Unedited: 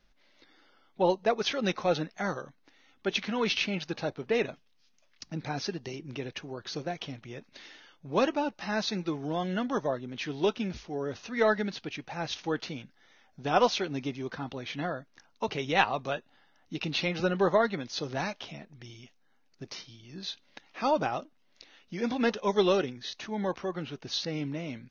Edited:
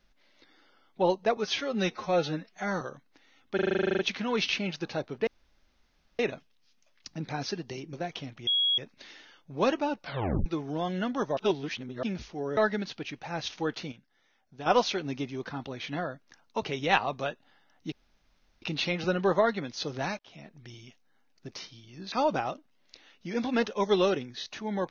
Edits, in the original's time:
1.37–2.33 stretch 1.5×
3.07 stutter 0.04 s, 12 plays
4.35 insert room tone 0.92 s
6.09–6.79 cut
7.33 add tone 3320 Hz -22.5 dBFS 0.31 s
8.56 tape stop 0.45 s
9.92–10.58 reverse
11.12–11.43 cut
12.78–13.52 gain -8.5 dB
16.78 insert room tone 0.70 s
18.35–18.69 fade in
20.28–20.79 cut

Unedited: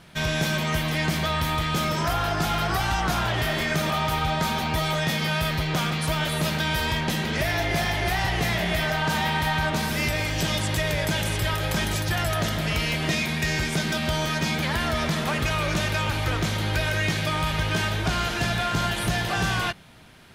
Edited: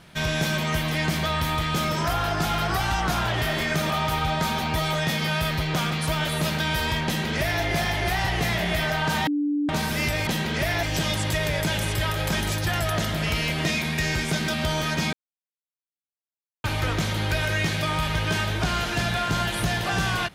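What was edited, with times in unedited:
7.06–7.62 copy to 10.27
9.27–9.69 bleep 292 Hz -21 dBFS
14.57–16.08 mute

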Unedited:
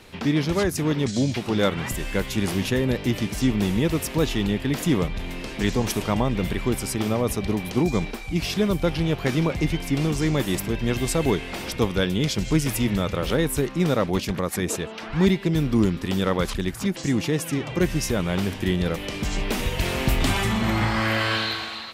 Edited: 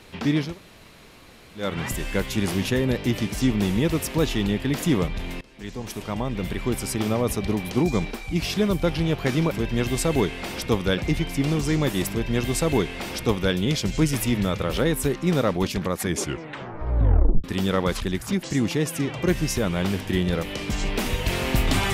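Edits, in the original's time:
0.47–1.66 room tone, crossfade 0.24 s
5.41–6.95 fade in, from -22 dB
10.61–12.08 copy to 9.51
14.58 tape stop 1.39 s

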